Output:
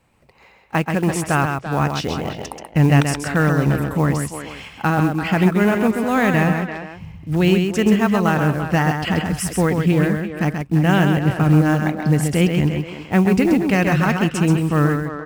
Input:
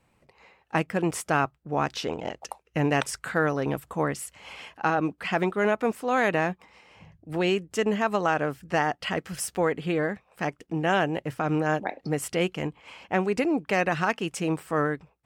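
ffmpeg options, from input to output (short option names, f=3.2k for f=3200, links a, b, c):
-filter_complex "[0:a]acrusher=bits=6:mode=log:mix=0:aa=0.000001,asplit=2[a][b];[b]aecho=0:1:132:0.531[c];[a][c]amix=inputs=2:normalize=0,asubboost=boost=5:cutoff=220,asplit=2[d][e];[e]adelay=340,highpass=300,lowpass=3.4k,asoftclip=type=hard:threshold=-15dB,volume=-9dB[f];[d][f]amix=inputs=2:normalize=0,volume=5dB"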